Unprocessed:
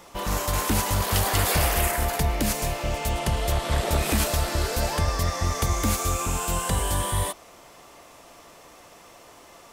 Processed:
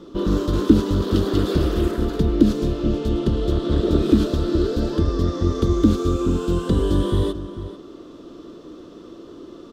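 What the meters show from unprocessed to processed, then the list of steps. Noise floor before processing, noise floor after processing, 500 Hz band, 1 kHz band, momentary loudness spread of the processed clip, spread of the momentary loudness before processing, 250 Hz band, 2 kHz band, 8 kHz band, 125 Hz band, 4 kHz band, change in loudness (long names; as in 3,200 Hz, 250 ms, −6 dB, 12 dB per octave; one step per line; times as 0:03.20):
−50 dBFS, −42 dBFS, +7.0 dB, −6.5 dB, 20 LU, 6 LU, +13.5 dB, −9.5 dB, below −15 dB, +4.5 dB, −4.0 dB, +4.0 dB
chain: drawn EQ curve 130 Hz 0 dB, 340 Hz +14 dB, 800 Hz −17 dB, 1,300 Hz −5 dB, 2,200 Hz −21 dB, 3,500 Hz −4 dB, 9,800 Hz −26 dB
slap from a distant wall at 76 metres, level −13 dB
speech leveller 2 s
level +3.5 dB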